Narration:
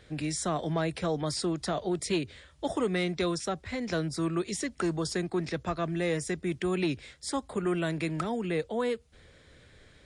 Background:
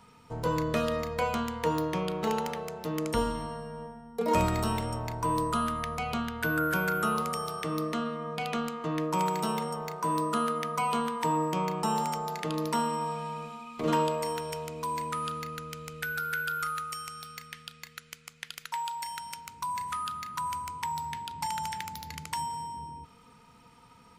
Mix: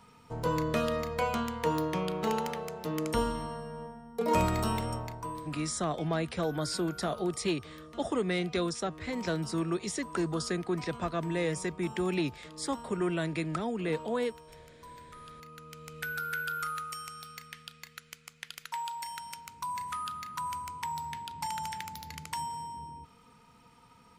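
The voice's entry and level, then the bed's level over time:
5.35 s, -1.5 dB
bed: 4.94 s -1 dB
5.58 s -17.5 dB
15.16 s -17.5 dB
16.00 s -2.5 dB

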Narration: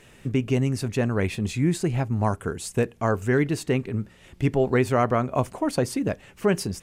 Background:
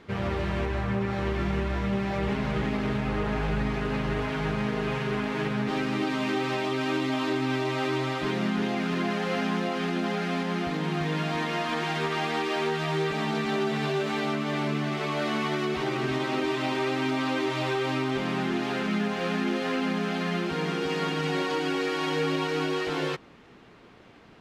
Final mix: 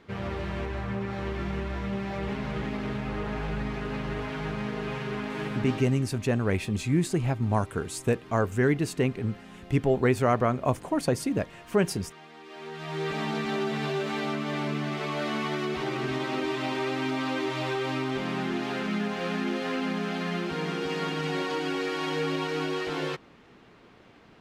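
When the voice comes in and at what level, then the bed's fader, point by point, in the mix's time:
5.30 s, -2.0 dB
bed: 5.68 s -4 dB
6.11 s -20.5 dB
12.37 s -20.5 dB
13.10 s -2 dB

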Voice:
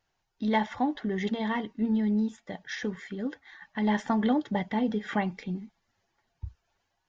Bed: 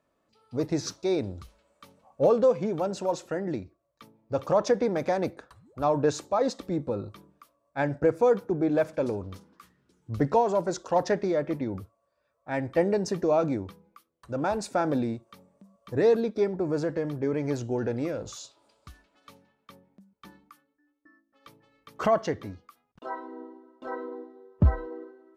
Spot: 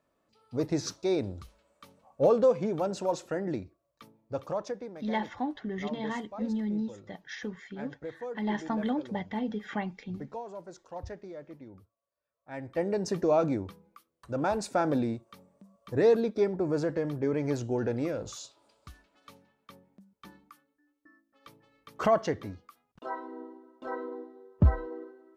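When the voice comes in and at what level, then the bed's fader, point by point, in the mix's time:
4.60 s, -5.0 dB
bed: 4.12 s -1.5 dB
4.95 s -17 dB
12.12 s -17 dB
13.15 s -1 dB

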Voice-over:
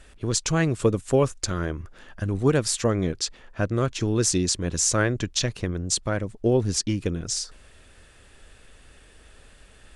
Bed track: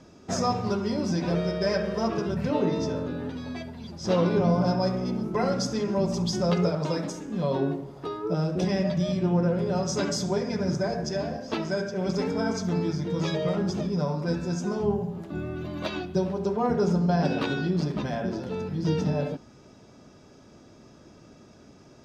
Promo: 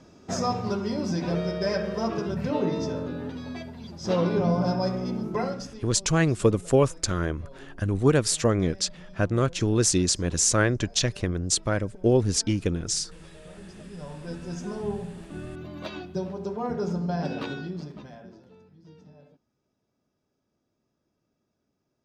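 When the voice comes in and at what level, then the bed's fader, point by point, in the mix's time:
5.60 s, +0.5 dB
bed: 5.38 s -1 dB
5.99 s -22.5 dB
13.34 s -22.5 dB
14.58 s -5 dB
17.48 s -5 dB
18.83 s -26 dB

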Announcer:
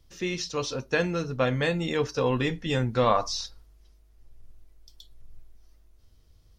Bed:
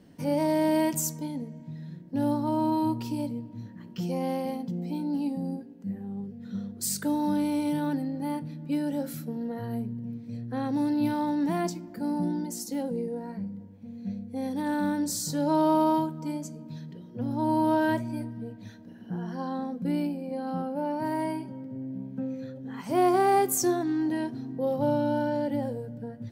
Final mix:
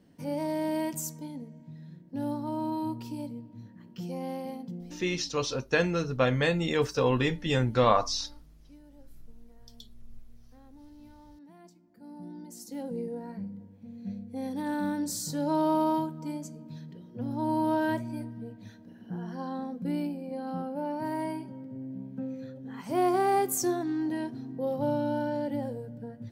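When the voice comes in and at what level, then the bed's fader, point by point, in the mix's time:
4.80 s, 0.0 dB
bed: 4.74 s -6 dB
5.33 s -26 dB
11.57 s -26 dB
12.99 s -3 dB

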